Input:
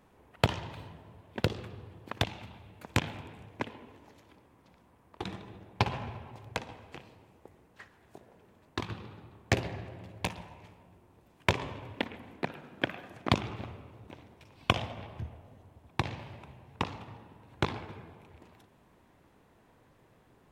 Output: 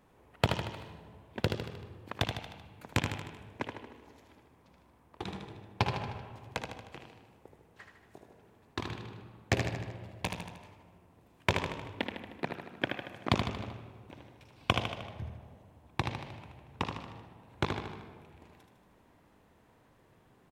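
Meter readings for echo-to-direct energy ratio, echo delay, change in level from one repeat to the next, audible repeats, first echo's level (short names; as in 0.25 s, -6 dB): -4.5 dB, 77 ms, -5.0 dB, 5, -6.0 dB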